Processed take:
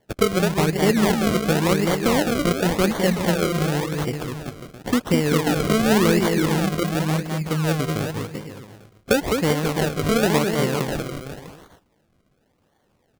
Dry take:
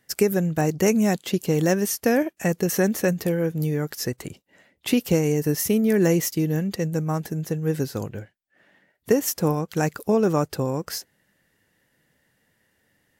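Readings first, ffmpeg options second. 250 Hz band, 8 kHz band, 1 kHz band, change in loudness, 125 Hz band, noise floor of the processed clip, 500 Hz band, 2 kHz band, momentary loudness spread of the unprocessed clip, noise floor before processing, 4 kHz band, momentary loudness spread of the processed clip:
+2.0 dB, 0.0 dB, +6.5 dB, +2.0 dB, +2.5 dB, −66 dBFS, +1.5 dB, +6.0 dB, 9 LU, −69 dBFS, +7.5 dB, 12 LU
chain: -af "aecho=1:1:210|388.5|540.2|669.2|778.8:0.631|0.398|0.251|0.158|0.1,acrusher=samples=34:mix=1:aa=0.000001:lfo=1:lforange=34:lforate=0.92"

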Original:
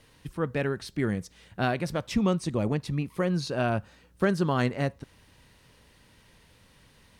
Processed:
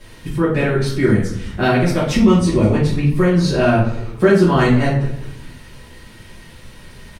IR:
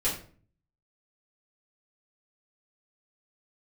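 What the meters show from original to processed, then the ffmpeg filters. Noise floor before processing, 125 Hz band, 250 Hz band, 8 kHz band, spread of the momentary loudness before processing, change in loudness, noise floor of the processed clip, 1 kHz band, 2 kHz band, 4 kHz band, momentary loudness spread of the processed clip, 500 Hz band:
−60 dBFS, +13.5 dB, +13.5 dB, +11.5 dB, 7 LU, +12.5 dB, −41 dBFS, +10.5 dB, +11.5 dB, +11.0 dB, 9 LU, +13.0 dB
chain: -filter_complex "[0:a]asplit=4[link_01][link_02][link_03][link_04];[link_02]adelay=206,afreqshift=-130,volume=-19dB[link_05];[link_03]adelay=412,afreqshift=-260,volume=-26.5dB[link_06];[link_04]adelay=618,afreqshift=-390,volume=-34.1dB[link_07];[link_01][link_05][link_06][link_07]amix=inputs=4:normalize=0[link_08];[1:a]atrim=start_sample=2205,asetrate=33516,aresample=44100[link_09];[link_08][link_09]afir=irnorm=-1:irlink=0,asplit=2[link_10][link_11];[link_11]acompressor=threshold=-26dB:ratio=6,volume=1dB[link_12];[link_10][link_12]amix=inputs=2:normalize=0,volume=-1dB"

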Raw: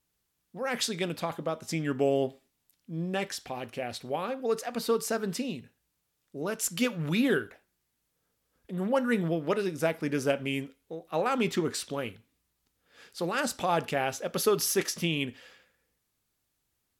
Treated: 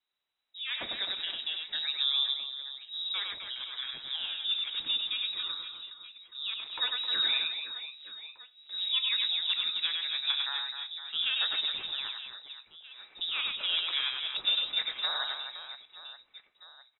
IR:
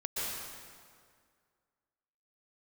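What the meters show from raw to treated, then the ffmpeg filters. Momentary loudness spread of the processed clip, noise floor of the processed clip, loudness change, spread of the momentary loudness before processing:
17 LU, −67 dBFS, 0.0 dB, 10 LU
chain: -af "aecho=1:1:100|260|516|925.6|1581:0.631|0.398|0.251|0.158|0.1,flanger=delay=3.9:depth=2.1:regen=-80:speed=0.27:shape=triangular,lowpass=frequency=3400:width_type=q:width=0.5098,lowpass=frequency=3400:width_type=q:width=0.6013,lowpass=frequency=3400:width_type=q:width=0.9,lowpass=frequency=3400:width_type=q:width=2.563,afreqshift=-4000"

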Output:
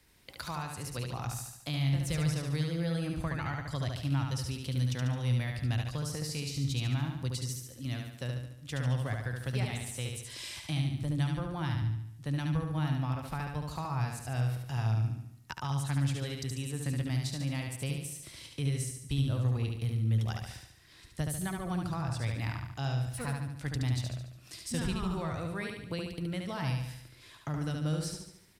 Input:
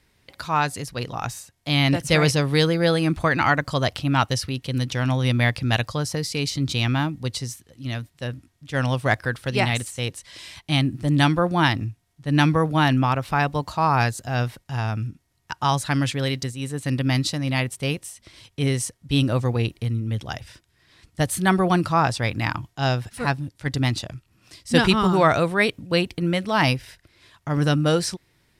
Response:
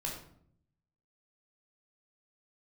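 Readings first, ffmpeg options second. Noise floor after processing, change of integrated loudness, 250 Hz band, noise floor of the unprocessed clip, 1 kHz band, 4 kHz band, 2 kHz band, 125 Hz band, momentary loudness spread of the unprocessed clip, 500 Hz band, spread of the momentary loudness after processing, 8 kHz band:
−55 dBFS, −11.5 dB, −12.5 dB, −65 dBFS, −17.5 dB, −14.0 dB, −17.0 dB, −7.0 dB, 13 LU, −16.5 dB, 8 LU, −8.5 dB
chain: -filter_complex "[0:a]highshelf=frequency=7300:gain=9,acrossover=split=130[link_01][link_02];[link_02]acompressor=threshold=-34dB:ratio=6[link_03];[link_01][link_03]amix=inputs=2:normalize=0,asplit=2[link_04][link_05];[link_05]aecho=0:1:72|144|216|288|360|432|504:0.631|0.328|0.171|0.0887|0.0461|0.024|0.0125[link_06];[link_04][link_06]amix=inputs=2:normalize=0,volume=-4dB"

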